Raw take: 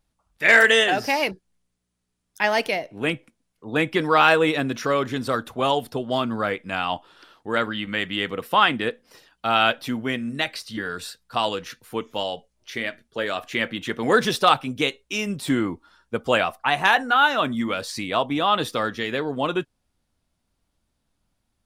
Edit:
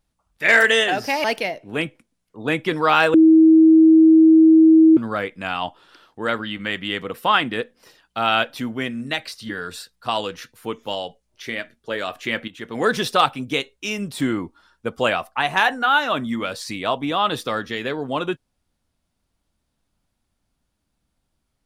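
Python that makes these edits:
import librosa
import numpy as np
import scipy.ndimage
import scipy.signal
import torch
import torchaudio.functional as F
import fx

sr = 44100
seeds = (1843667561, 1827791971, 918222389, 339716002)

y = fx.edit(x, sr, fx.cut(start_s=1.24, length_s=1.28),
    fx.bleep(start_s=4.42, length_s=1.83, hz=320.0, db=-7.5),
    fx.fade_in_from(start_s=13.76, length_s=0.64, curve='qsin', floor_db=-13.5), tone=tone)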